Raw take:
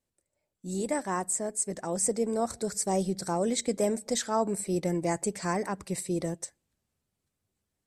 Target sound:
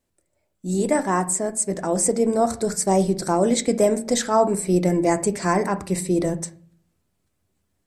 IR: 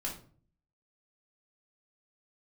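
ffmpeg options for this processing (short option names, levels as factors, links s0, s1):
-filter_complex "[0:a]asplit=2[s0][s1];[1:a]atrim=start_sample=2205,lowpass=2900[s2];[s1][s2]afir=irnorm=-1:irlink=0,volume=0.447[s3];[s0][s3]amix=inputs=2:normalize=0,volume=2.11"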